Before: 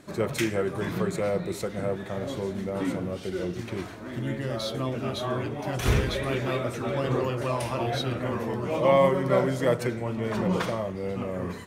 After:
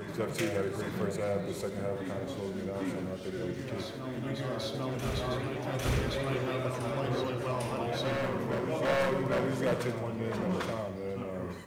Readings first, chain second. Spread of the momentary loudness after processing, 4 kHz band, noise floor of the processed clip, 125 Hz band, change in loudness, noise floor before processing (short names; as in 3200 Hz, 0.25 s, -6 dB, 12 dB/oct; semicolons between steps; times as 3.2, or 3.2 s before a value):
7 LU, -4.5 dB, -40 dBFS, -5.0 dB, -5.5 dB, -39 dBFS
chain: wavefolder -17 dBFS; reverse echo 0.801 s -5.5 dB; lo-fi delay 80 ms, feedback 55%, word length 9-bit, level -11 dB; gain -6 dB